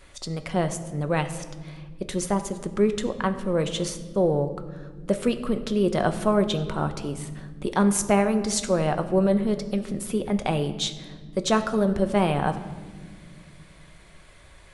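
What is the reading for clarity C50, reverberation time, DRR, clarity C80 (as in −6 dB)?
12.0 dB, 1.6 s, 8.0 dB, 13.5 dB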